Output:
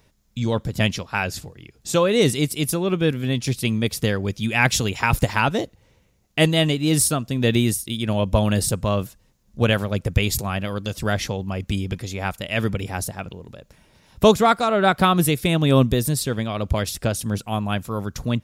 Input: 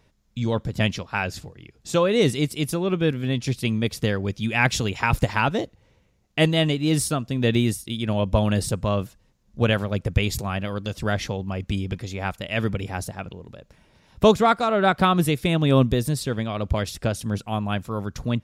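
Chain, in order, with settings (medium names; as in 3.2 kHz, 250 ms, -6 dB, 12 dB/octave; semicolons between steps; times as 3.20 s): treble shelf 7.7 kHz +10.5 dB; trim +1.5 dB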